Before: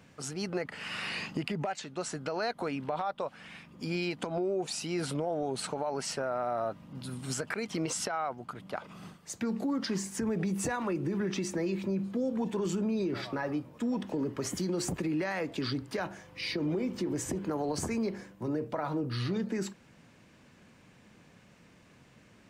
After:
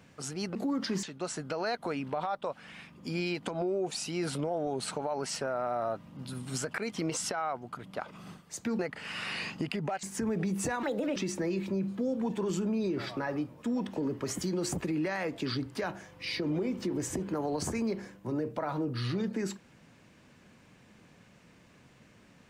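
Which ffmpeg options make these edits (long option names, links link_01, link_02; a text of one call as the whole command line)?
ffmpeg -i in.wav -filter_complex "[0:a]asplit=7[link_01][link_02][link_03][link_04][link_05][link_06][link_07];[link_01]atrim=end=0.552[link_08];[link_02]atrim=start=9.548:end=10.032[link_09];[link_03]atrim=start=1.788:end=9.552[link_10];[link_04]atrim=start=0.548:end=1.792[link_11];[link_05]atrim=start=10.028:end=10.834[link_12];[link_06]atrim=start=10.83:end=11.32,asetpts=PTS-STARTPTS,asetrate=65268,aresample=44100[link_13];[link_07]atrim=start=11.316[link_14];[link_08][link_09]acrossfade=duration=0.004:curve1=hsin:curve2=hsin[link_15];[link_15][link_10]acrossfade=duration=0.004:curve1=hsin:curve2=hsin[link_16];[link_16][link_11]acrossfade=duration=0.004:curve1=hsin:curve2=hsin[link_17];[link_17][link_12]acrossfade=duration=0.004:curve1=hsin:curve2=hsin[link_18];[link_18][link_13]acrossfade=duration=0.004:curve1=hsin:curve2=hsin[link_19];[link_19][link_14]acrossfade=duration=0.004:curve1=hsin:curve2=hsin" out.wav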